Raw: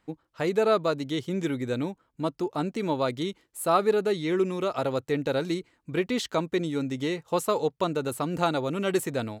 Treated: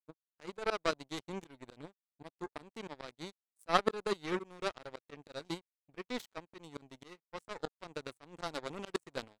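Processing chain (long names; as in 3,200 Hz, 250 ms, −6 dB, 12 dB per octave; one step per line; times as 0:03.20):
downsampling to 22,050 Hz
power curve on the samples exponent 3
soft clipping −13.5 dBFS, distortion −20 dB
volume swells 294 ms
level +14.5 dB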